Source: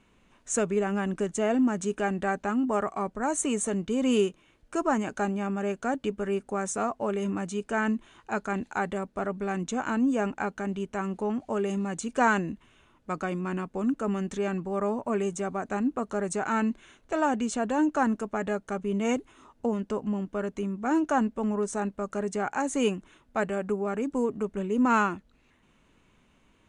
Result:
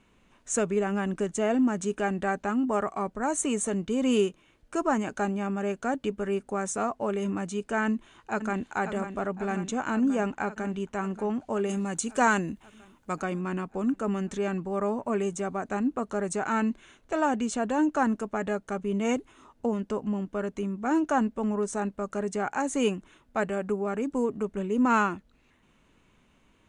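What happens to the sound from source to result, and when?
7.86–8.72 s: echo throw 540 ms, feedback 75%, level -8.5 dB
11.69–13.22 s: treble shelf 6.4 kHz +11 dB

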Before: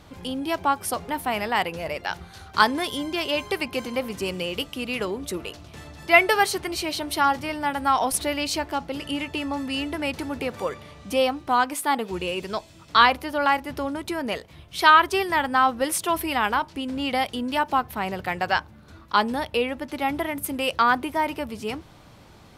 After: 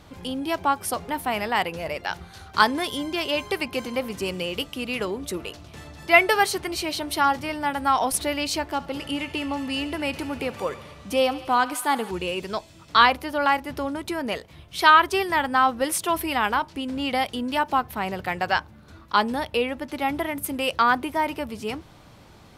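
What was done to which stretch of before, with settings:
8.65–12.11 s: thinning echo 69 ms, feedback 82%, level -17 dB

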